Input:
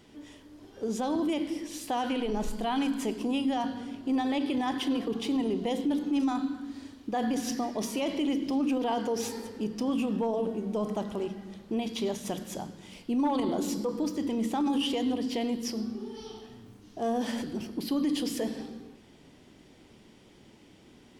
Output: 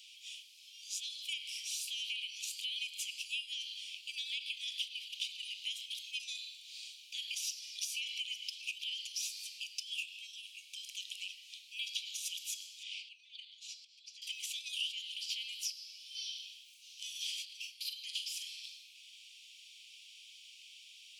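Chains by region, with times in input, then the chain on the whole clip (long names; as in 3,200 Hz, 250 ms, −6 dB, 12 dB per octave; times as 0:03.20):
0:12.83–0:14.22: low-pass filter 4,700 Hz + downward compressor 3 to 1, threshold −44 dBFS
0:17.45–0:18.64: tilt shelving filter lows +7 dB, about 1,400 Hz + double-tracking delay 43 ms −7.5 dB
whole clip: Butterworth high-pass 2,400 Hz 96 dB per octave; high-shelf EQ 7,000 Hz −8 dB; downward compressor 5 to 1, threshold −49 dBFS; level +12 dB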